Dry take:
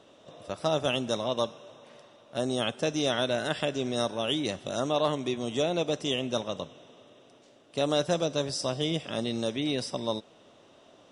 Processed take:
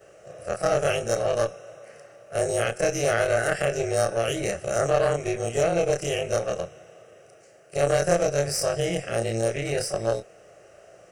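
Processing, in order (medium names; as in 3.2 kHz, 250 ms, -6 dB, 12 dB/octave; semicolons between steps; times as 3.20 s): short-time spectra conjugated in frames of 70 ms; treble shelf 8.1 kHz +7.5 dB; in parallel at +2 dB: peak limiter -23.5 dBFS, peak gain reduction 8 dB; on the sum: Chebyshev shaper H 2 -7 dB, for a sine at -11.5 dBFS; static phaser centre 970 Hz, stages 6; trim +4.5 dB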